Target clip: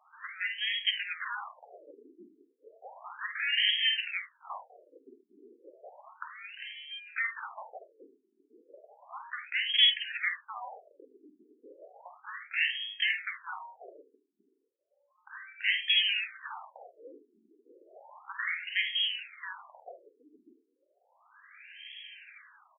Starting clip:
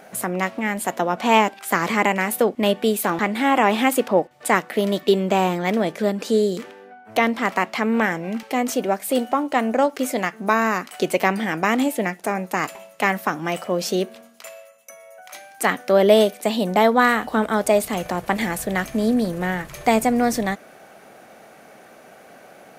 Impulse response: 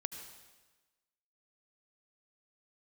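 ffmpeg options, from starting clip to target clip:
-af "equalizer=frequency=210:width_type=o:width=0.5:gain=11.5,alimiter=limit=-6.5dB:level=0:latency=1:release=135,aeval=exprs='0.473*sin(PI/2*1.78*val(0)/0.473)':channel_layout=same,acontrast=26,flanger=delay=6.7:depth=5.7:regen=-63:speed=0.15:shape=triangular,aecho=1:1:49|50|74|103:0.335|0.224|0.224|0.112,lowpass=frequency=3300:width_type=q:width=0.5098,lowpass=frequency=3300:width_type=q:width=0.6013,lowpass=frequency=3300:width_type=q:width=0.9,lowpass=frequency=3300:width_type=q:width=2.563,afreqshift=-3900,afftfilt=real='re*between(b*sr/1024,300*pow(2400/300,0.5+0.5*sin(2*PI*0.33*pts/sr))/1.41,300*pow(2400/300,0.5+0.5*sin(2*PI*0.33*pts/sr))*1.41)':imag='im*between(b*sr/1024,300*pow(2400/300,0.5+0.5*sin(2*PI*0.33*pts/sr))/1.41,300*pow(2400/300,0.5+0.5*sin(2*PI*0.33*pts/sr))*1.41)':win_size=1024:overlap=0.75,volume=-8.5dB"

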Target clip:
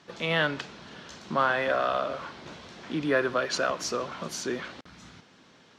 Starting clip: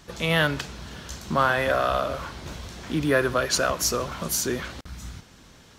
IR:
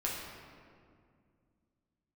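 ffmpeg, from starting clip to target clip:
-af "highpass=190,lowpass=4600,volume=-3dB"

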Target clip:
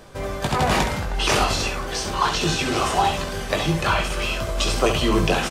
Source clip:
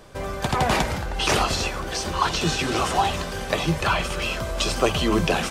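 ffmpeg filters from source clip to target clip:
ffmpeg -i in.wav -af "areverse,acompressor=mode=upward:threshold=-32dB:ratio=2.5,areverse,aecho=1:1:20|68:0.501|0.422" out.wav

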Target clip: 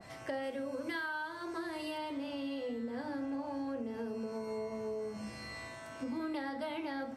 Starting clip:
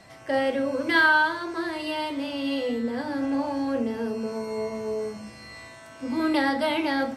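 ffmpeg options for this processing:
ffmpeg -i in.wav -filter_complex "[0:a]asettb=1/sr,asplit=3[link_01][link_02][link_03];[link_01]atrim=end=0.434[link_04];[link_02]atrim=start=0.43:end=1.98,asetpts=PTS-STARTPTS,afade=type=in:duration=0.004:curve=qsin,afade=type=out:start_time=1.546:duration=0.004:curve=qsin,highshelf=frequency=7300:gain=10.5[link_05];[link_03]atrim=start=1.976[link_06];[link_04][link_05]acrossfade=duration=0.004:curve1=hsin:curve2=qsin[link_07];[link_07][link_06]acrossfade=duration=0.004:curve1=qsin:curve2=hsin,acompressor=threshold=-36dB:ratio=5,adynamicequalizer=threshold=0.00355:dfrequency=1800:dqfactor=0.7:tfrequency=1800:tqfactor=0.7:attack=5:release=100:ratio=0.375:range=2:mode=cutabove:tftype=highshelf,volume=-1dB" out.wav

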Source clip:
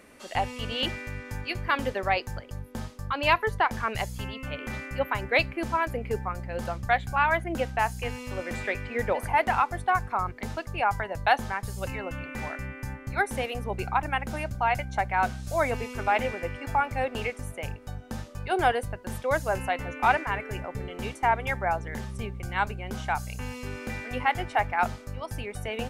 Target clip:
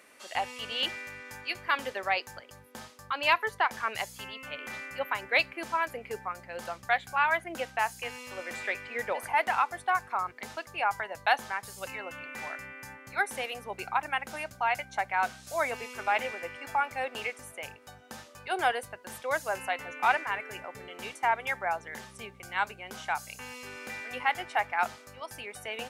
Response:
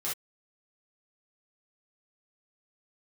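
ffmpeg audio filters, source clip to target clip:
-af "highpass=frequency=920:poles=1"

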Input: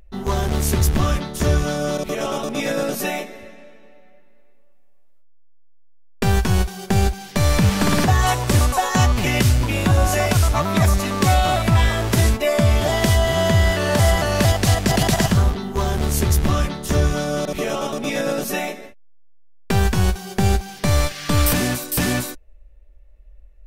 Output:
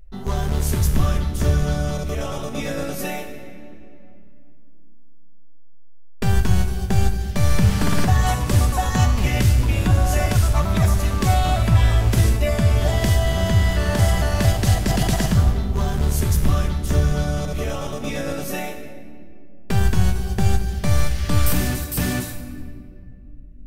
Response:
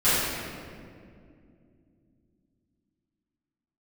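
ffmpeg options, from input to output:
-filter_complex "[0:a]lowshelf=frequency=120:gain=9,asplit=2[link_01][link_02];[1:a]atrim=start_sample=2205,highshelf=frequency=6100:gain=10.5[link_03];[link_02][link_03]afir=irnorm=-1:irlink=0,volume=-25.5dB[link_04];[link_01][link_04]amix=inputs=2:normalize=0,volume=-6dB"

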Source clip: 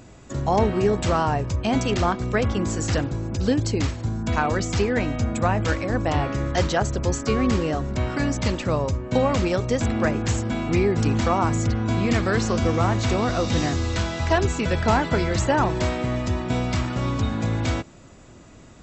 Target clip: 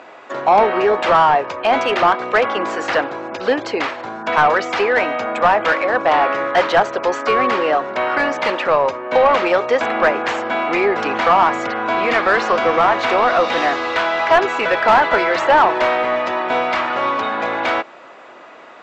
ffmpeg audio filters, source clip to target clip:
ffmpeg -i in.wav -filter_complex "[0:a]highpass=590,lowpass=3300,asplit=2[link_01][link_02];[link_02]highpass=frequency=720:poles=1,volume=17dB,asoftclip=type=tanh:threshold=-9.5dB[link_03];[link_01][link_03]amix=inputs=2:normalize=0,lowpass=frequency=1300:poles=1,volume=-6dB,volume=8dB" out.wav

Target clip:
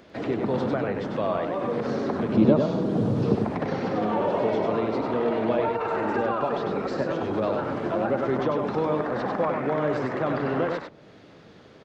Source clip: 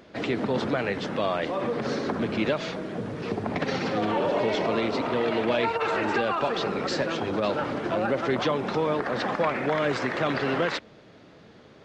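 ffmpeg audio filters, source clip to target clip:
ffmpeg -i in.wav -filter_complex "[0:a]asettb=1/sr,asplit=3[link_01][link_02][link_03];[link_01]atrim=end=2.344[link_04];[link_02]atrim=start=2.34:end=3.35,asetpts=PTS-STARTPTS,afade=type=in:duration=0.004:curve=qsin,afade=type=out:start_time=1.006:duration=0.004:curve=qsin,equalizer=frequency=125:width_type=o:width=1:gain=10,equalizer=frequency=250:width_type=o:width=1:gain=7,equalizer=frequency=500:width_type=o:width=1:gain=3,equalizer=frequency=1000:width_type=o:width=1:gain=4,equalizer=frequency=2000:width_type=o:width=1:gain=-9,equalizer=frequency=4000:width_type=o:width=1:gain=3[link_05];[link_03]atrim=start=3.346[link_06];[link_04][link_05]acrossfade=duration=0.004:curve1=hsin:curve2=qsin[link_07];[link_07][link_06]acrossfade=duration=0.004:curve1=qsin:curve2=hsin,acrossover=split=1400[link_08][link_09];[link_09]acompressor=threshold=-46dB:ratio=6[link_10];[link_08][link_10]amix=inputs=2:normalize=0,aecho=1:1:98:0.596" out.wav

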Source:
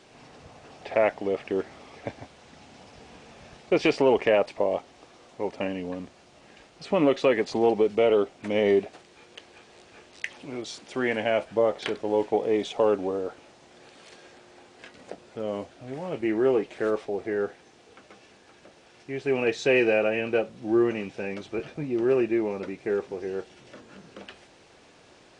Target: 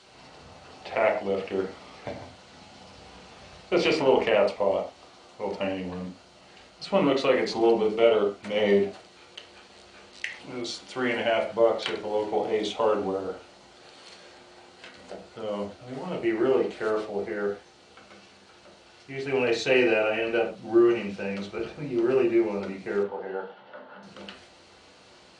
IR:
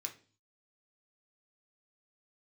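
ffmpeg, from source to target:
-filter_complex "[0:a]asettb=1/sr,asplit=3[link_01][link_02][link_03];[link_01]atrim=end=23.034[link_04];[link_02]atrim=start=23.03:end=24.03,asetpts=PTS-STARTPTS,afade=type=in:duration=0.004:curve=qsin,afade=type=out:start_time=0.996:duration=0.004:curve=qsin,highpass=220,equalizer=frequency=340:width_type=q:width=4:gain=-9,equalizer=frequency=550:width_type=q:width=4:gain=5,equalizer=frequency=860:width_type=q:width=4:gain=10,equalizer=frequency=1500:width_type=q:width=4:gain=5,equalizer=frequency=2400:width_type=q:width=4:gain=-9,lowpass=frequency=3100:width=0.5412,lowpass=frequency=3100:width=1.3066[link_05];[link_03]atrim=start=24.026[link_06];[link_04][link_05]acrossfade=duration=0.004:curve1=hsin:curve2=qsin[link_07];[link_07][link_06]acrossfade=duration=0.004:curve1=qsin:curve2=hsin[link_08];[1:a]atrim=start_sample=2205,atrim=end_sample=3528,asetrate=25137,aresample=44100[link_09];[link_08][link_09]afir=irnorm=-1:irlink=0"

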